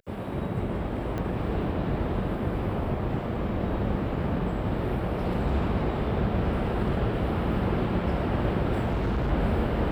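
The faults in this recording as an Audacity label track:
1.180000	1.180000	pop -21 dBFS
8.840000	9.320000	clipped -23 dBFS

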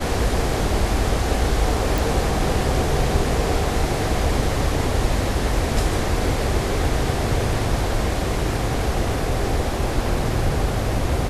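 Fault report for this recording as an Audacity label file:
1.980000	1.980000	pop

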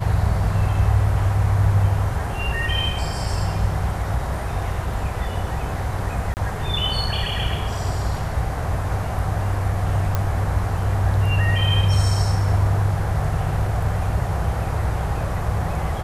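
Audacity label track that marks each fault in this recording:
6.340000	6.370000	gap 29 ms
10.150000	10.150000	pop -8 dBFS

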